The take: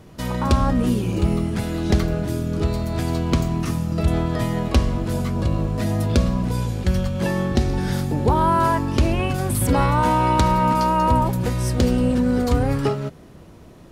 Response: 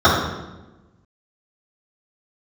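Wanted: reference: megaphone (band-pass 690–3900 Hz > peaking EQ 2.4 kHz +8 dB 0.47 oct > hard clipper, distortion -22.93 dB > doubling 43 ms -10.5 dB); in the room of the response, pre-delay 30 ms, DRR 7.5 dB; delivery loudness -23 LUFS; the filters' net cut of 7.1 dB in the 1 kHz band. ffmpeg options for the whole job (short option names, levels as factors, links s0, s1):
-filter_complex "[0:a]equalizer=f=1000:t=o:g=-7,asplit=2[s0][s1];[1:a]atrim=start_sample=2205,adelay=30[s2];[s1][s2]afir=irnorm=-1:irlink=0,volume=0.0178[s3];[s0][s3]amix=inputs=2:normalize=0,highpass=690,lowpass=3900,equalizer=f=2400:t=o:w=0.47:g=8,asoftclip=type=hard:threshold=0.141,asplit=2[s4][s5];[s5]adelay=43,volume=0.299[s6];[s4][s6]amix=inputs=2:normalize=0,volume=2.24"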